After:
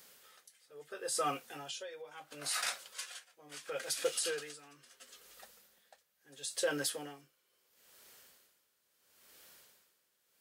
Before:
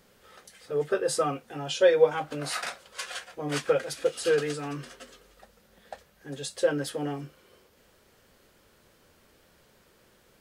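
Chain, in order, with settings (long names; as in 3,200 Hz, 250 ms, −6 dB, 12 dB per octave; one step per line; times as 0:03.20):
spectral tilt +3.5 dB per octave
brickwall limiter −19 dBFS, peak gain reduction 9 dB
tremolo with a sine in dB 0.74 Hz, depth 19 dB
level −2.5 dB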